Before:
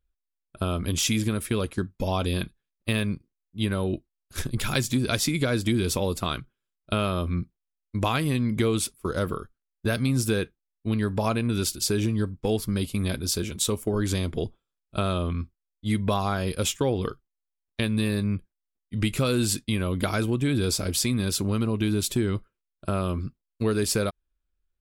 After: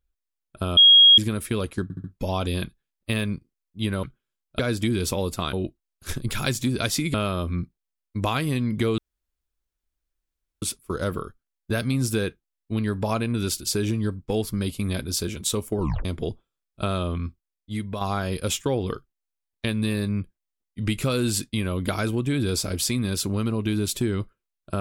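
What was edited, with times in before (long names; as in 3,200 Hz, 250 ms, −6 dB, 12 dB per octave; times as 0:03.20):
0:00.77–0:01.18: beep over 3,280 Hz −9 dBFS
0:01.83: stutter 0.07 s, 4 plays
0:03.82–0:05.43: swap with 0:06.37–0:06.93
0:08.77: splice in room tone 1.64 s
0:13.94: tape stop 0.26 s
0:15.42–0:16.16: fade out, to −8 dB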